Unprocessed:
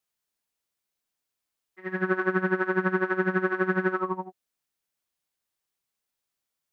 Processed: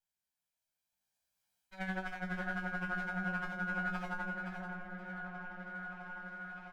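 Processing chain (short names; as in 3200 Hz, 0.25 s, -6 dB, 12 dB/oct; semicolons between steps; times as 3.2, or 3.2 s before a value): minimum comb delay 1.3 ms; Doppler pass-by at 1.97, 12 m/s, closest 5 m; feedback echo 0.523 s, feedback 27%, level -11 dB; reverse; compressor 10:1, threshold -42 dBFS, peak gain reduction 20.5 dB; reverse; resonator 63 Hz, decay 0.21 s, harmonics all, mix 100%; repeats that get brighter 0.657 s, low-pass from 400 Hz, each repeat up 1 oct, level -3 dB; gain +13 dB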